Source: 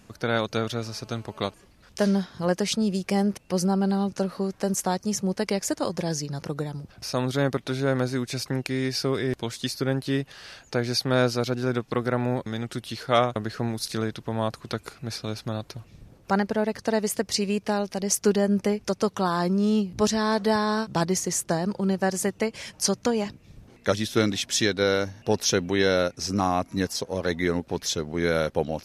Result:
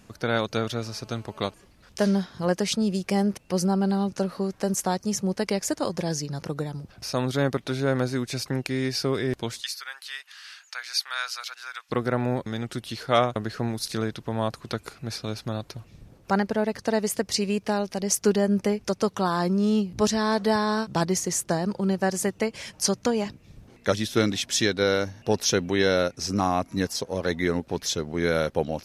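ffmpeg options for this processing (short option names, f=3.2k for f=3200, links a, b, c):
-filter_complex "[0:a]asplit=3[a][b][c];[a]afade=t=out:st=9.6:d=0.02[d];[b]highpass=f=1.2k:w=0.5412,highpass=f=1.2k:w=1.3066,afade=t=in:st=9.6:d=0.02,afade=t=out:st=11.89:d=0.02[e];[c]afade=t=in:st=11.89:d=0.02[f];[d][e][f]amix=inputs=3:normalize=0"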